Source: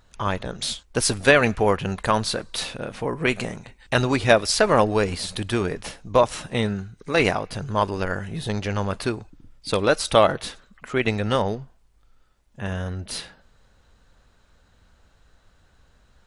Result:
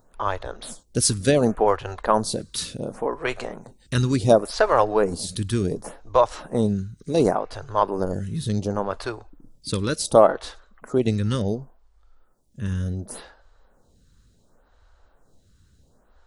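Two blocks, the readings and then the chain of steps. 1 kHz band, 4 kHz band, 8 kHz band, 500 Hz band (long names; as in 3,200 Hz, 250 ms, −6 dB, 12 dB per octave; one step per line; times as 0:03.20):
0.0 dB, −5.0 dB, +0.5 dB, +0.5 dB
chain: parametric band 2,400 Hz −10.5 dB 1.3 octaves
phaser with staggered stages 0.69 Hz
level +4 dB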